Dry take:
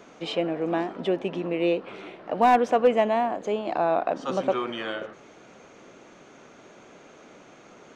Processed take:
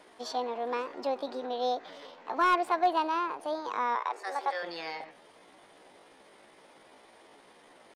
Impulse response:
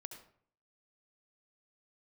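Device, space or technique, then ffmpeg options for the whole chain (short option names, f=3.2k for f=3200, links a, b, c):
chipmunk voice: -filter_complex "[0:a]asettb=1/sr,asplit=3[a][b][c];[a]atrim=end=3.964[d];[b]atrim=start=3.96:end=4.64,asetpts=PTS-STARTPTS,afade=t=in:d=0.004:c=qsin,afade=t=out:st=0.676:d=0.004:c=qsin,highpass=f=300:w=0.5412,highpass=f=300:w=1.3066[e];[c]atrim=start=4.636[f];[d][e]acrossfade=d=0.004:c1=hsin:c2=qsin[g];[g][f]acrossfade=d=0.004:c1=qsin:c2=hsin,asetrate=64194,aresample=44100,atempo=0.686977,volume=-6.5dB"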